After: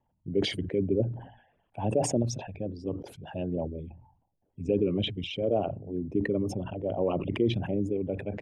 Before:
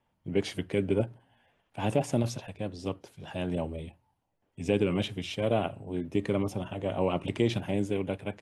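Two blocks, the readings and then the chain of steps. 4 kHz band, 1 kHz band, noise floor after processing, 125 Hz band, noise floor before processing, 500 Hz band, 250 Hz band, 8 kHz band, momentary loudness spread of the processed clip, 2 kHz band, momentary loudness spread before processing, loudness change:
+2.5 dB, -1.5 dB, -75 dBFS, +0.5 dB, -76 dBFS, +1.0 dB, +0.5 dB, +5.0 dB, 10 LU, -2.5 dB, 10 LU, +0.5 dB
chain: resonances exaggerated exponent 2; decay stretcher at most 93 dB/s

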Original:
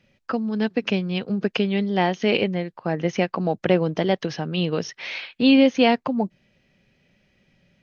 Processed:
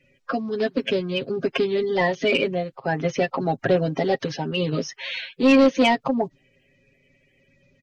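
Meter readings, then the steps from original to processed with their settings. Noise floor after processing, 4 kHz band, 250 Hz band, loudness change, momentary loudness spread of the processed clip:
-64 dBFS, -1.0 dB, -2.0 dB, 0.0 dB, 11 LU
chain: coarse spectral quantiser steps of 30 dB; comb 7.4 ms, depth 70%; saturation -9.5 dBFS, distortion -14 dB

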